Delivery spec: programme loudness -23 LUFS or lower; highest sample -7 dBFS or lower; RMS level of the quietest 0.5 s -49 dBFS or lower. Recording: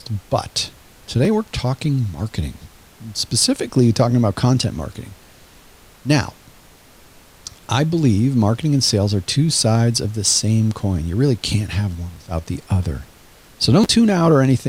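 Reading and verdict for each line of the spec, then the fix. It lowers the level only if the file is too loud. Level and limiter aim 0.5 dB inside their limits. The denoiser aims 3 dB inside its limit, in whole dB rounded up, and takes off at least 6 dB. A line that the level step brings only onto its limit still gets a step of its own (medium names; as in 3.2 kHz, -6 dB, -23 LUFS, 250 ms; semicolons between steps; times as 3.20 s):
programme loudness -18.0 LUFS: fail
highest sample -4.0 dBFS: fail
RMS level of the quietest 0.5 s -47 dBFS: fail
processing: trim -5.5 dB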